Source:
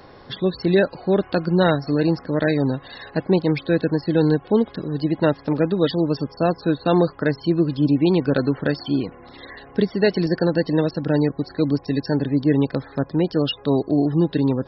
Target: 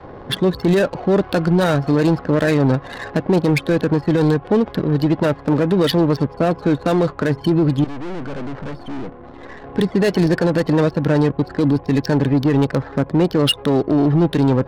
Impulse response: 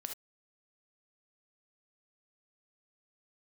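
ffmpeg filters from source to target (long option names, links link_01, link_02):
-filter_complex "[0:a]asettb=1/sr,asplit=3[link_01][link_02][link_03];[link_01]atrim=end=7.844[link_04];[link_02]atrim=start=7.84:end=9.64,asetpts=PTS-STARTPTS,afade=type=in:duration=0.004:curve=qsin,afade=type=out:start_time=1.796:duration=0.004:curve=qsin,aeval=exprs='(tanh(70.8*val(0)+0.75)-tanh(0.75))/70.8':channel_layout=same[link_05];[link_03]atrim=start=9.636[link_06];[link_04][link_05]acrossfade=duration=0.004:curve1=hsin:curve2=qsin[link_07];[link_07][link_06]acrossfade=duration=0.004:curve1=qsin:curve2=hsin,asplit=2[link_08][link_09];[link_09]aeval=exprs='0.126*(abs(mod(val(0)/0.126+3,4)-2)-1)':channel_layout=same,volume=-10dB[link_10];[link_08][link_10]amix=inputs=2:normalize=0,adynamicsmooth=sensitivity=4.5:basefreq=840,adynamicequalizer=threshold=0.0398:dfrequency=270:dqfactor=1.2:tfrequency=270:tqfactor=1.2:attack=5:release=100:ratio=0.375:range=2.5:mode=cutabove:tftype=bell,alimiter=level_in=16dB:limit=-1dB:release=50:level=0:latency=1,volume=-8dB"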